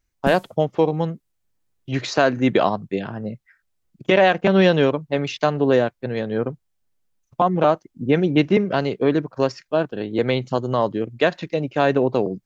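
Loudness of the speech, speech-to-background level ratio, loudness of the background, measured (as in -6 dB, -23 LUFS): -20.5 LUFS, 13.0 dB, -33.5 LUFS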